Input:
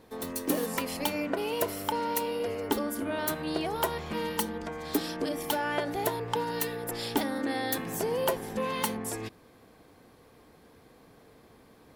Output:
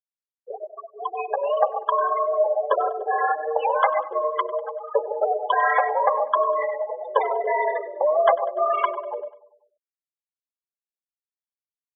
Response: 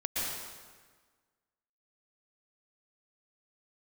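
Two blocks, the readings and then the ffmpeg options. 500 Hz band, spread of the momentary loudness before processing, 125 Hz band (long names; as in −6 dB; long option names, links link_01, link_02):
+9.5 dB, 4 LU, below −40 dB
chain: -filter_complex "[0:a]asplit=2[link_01][link_02];[1:a]atrim=start_sample=2205,afade=type=out:start_time=0.21:duration=0.01,atrim=end_sample=9702[link_03];[link_02][link_03]afir=irnorm=-1:irlink=0,volume=-7dB[link_04];[link_01][link_04]amix=inputs=2:normalize=0,flanger=delay=2.9:depth=7.3:regen=-32:speed=1.7:shape=triangular,dynaudnorm=framelen=800:gausssize=3:maxgain=13dB,afftfilt=real='re*gte(hypot(re,im),0.224)':imag='im*gte(hypot(re,im),0.224)':win_size=1024:overlap=0.75,aecho=1:1:98|196|294|392|490:0.106|0.0593|0.0332|0.0186|0.0104,highpass=frequency=350:width_type=q:width=0.5412,highpass=frequency=350:width_type=q:width=1.307,lowpass=frequency=2500:width_type=q:width=0.5176,lowpass=frequency=2500:width_type=q:width=0.7071,lowpass=frequency=2500:width_type=q:width=1.932,afreqshift=150"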